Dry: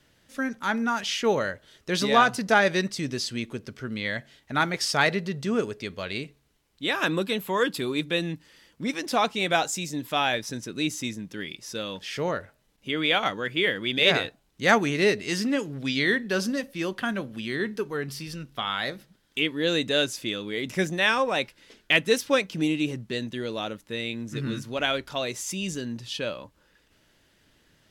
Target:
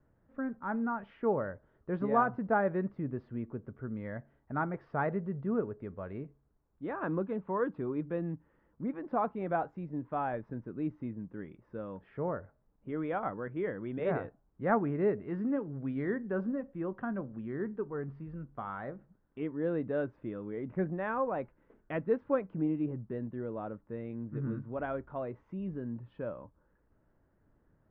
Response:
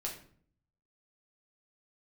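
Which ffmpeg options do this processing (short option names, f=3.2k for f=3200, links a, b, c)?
-af "lowpass=f=1.3k:w=0.5412,lowpass=f=1.3k:w=1.3066,lowshelf=f=130:g=6.5,volume=-7dB"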